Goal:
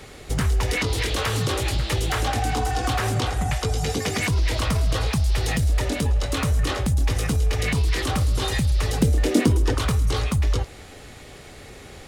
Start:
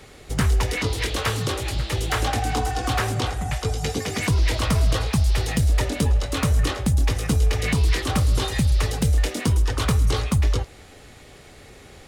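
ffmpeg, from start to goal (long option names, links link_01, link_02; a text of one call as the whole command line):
ffmpeg -i in.wav -filter_complex "[0:a]alimiter=limit=-18dB:level=0:latency=1:release=76,asettb=1/sr,asplit=3[link_01][link_02][link_03];[link_01]atrim=end=9.024[link_04];[link_02]atrim=start=9.02:end=9.75,asetpts=PTS-STARTPTS,afade=type=in:duration=0.004:curve=qsin,afade=type=out:start_time=0.726:duration=0.004:curve=qsin,equalizer=frequency=310:width_type=o:width=1.5:gain=11.5[link_05];[link_03]atrim=start=9.746[link_06];[link_04][link_05]acrossfade=duration=0.004:curve1=hsin:curve2=qsin[link_07];[link_07][link_06]acrossfade=duration=0.004:curve1=qsin:curve2=hsin,volume=3.5dB" out.wav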